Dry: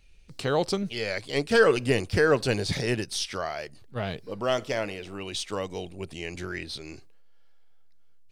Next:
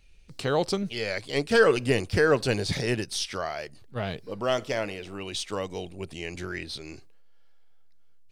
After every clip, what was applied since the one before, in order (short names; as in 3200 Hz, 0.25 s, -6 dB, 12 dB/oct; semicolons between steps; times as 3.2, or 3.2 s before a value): nothing audible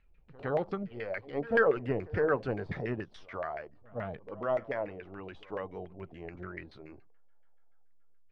bin magnitudes rounded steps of 15 dB; pre-echo 0.111 s -21 dB; LFO low-pass saw down 7 Hz 580–2000 Hz; gain -8 dB